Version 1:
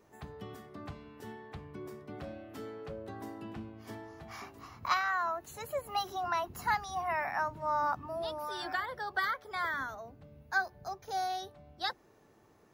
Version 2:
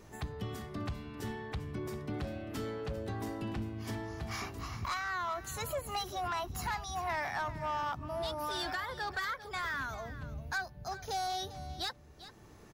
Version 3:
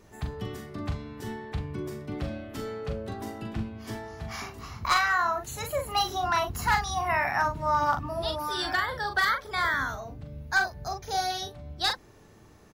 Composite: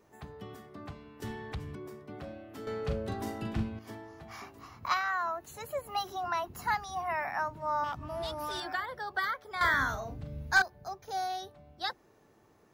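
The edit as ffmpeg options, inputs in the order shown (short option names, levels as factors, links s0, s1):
-filter_complex "[1:a]asplit=2[s0][s1];[2:a]asplit=2[s2][s3];[0:a]asplit=5[s4][s5][s6][s7][s8];[s4]atrim=end=1.222[s9];[s0]atrim=start=1.218:end=1.752[s10];[s5]atrim=start=1.748:end=2.672[s11];[s2]atrim=start=2.668:end=3.792[s12];[s6]atrim=start=3.788:end=7.842[s13];[s1]atrim=start=7.838:end=8.602[s14];[s7]atrim=start=8.598:end=9.612[s15];[s3]atrim=start=9.608:end=10.622[s16];[s8]atrim=start=10.618[s17];[s9][s10]acrossfade=d=0.004:c1=hsin:c2=hsin[s18];[s18][s11]acrossfade=d=0.004:c1=hsin:c2=hsin[s19];[s19][s12]acrossfade=d=0.004:c1=hsin:c2=hsin[s20];[s20][s13]acrossfade=d=0.004:c1=hsin:c2=hsin[s21];[s21][s14]acrossfade=d=0.004:c1=hsin:c2=hsin[s22];[s22][s15]acrossfade=d=0.004:c1=hsin:c2=hsin[s23];[s23][s16]acrossfade=d=0.004:c1=hsin:c2=hsin[s24];[s24][s17]acrossfade=d=0.004:c1=hsin:c2=hsin"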